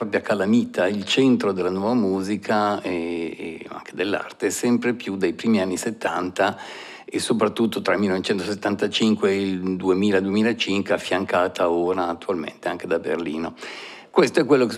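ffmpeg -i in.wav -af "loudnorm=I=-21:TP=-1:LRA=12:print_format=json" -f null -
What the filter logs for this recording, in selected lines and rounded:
"input_i" : "-22.3",
"input_tp" : "-3.8",
"input_lra" : "3.1",
"input_thresh" : "-32.6",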